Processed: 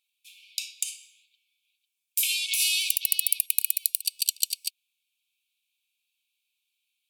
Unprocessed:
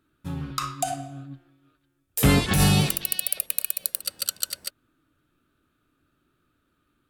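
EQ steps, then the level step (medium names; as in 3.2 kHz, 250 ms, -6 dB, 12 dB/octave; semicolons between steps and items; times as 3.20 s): brick-wall FIR high-pass 2.2 kHz; +2.0 dB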